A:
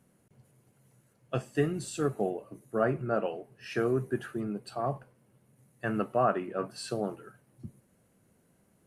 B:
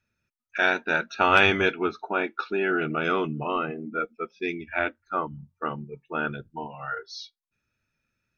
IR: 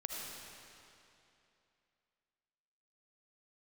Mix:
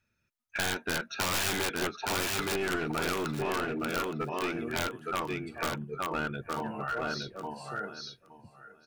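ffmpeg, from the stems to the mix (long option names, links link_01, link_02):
-filter_complex "[0:a]adelay=800,volume=-11dB,asplit=2[link_01][link_02];[link_02]volume=-22dB[link_03];[1:a]aeval=exprs='(mod(5.96*val(0)+1,2)-1)/5.96':channel_layout=same,volume=0.5dB,asplit=2[link_04][link_05];[link_05]volume=-4.5dB[link_06];[link_03][link_06]amix=inputs=2:normalize=0,aecho=0:1:867|1734|2601:1|0.16|0.0256[link_07];[link_01][link_04][link_07]amix=inputs=3:normalize=0,aeval=exprs='clip(val(0),-1,0.0447)':channel_layout=same,acompressor=threshold=-31dB:ratio=2"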